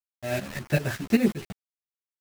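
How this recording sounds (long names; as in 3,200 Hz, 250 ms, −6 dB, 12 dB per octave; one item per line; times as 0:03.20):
a quantiser's noise floor 6 bits, dither none
tremolo saw up 5.2 Hz, depth 80%
a shimmering, thickened sound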